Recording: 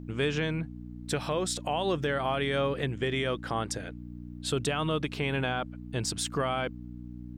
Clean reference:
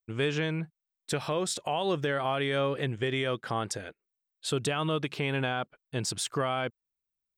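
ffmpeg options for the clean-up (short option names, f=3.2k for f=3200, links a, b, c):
-af "bandreject=f=60.2:t=h:w=4,bandreject=f=120.4:t=h:w=4,bandreject=f=180.6:t=h:w=4,bandreject=f=240.8:t=h:w=4,bandreject=f=301:t=h:w=4,agate=range=-21dB:threshold=-35dB"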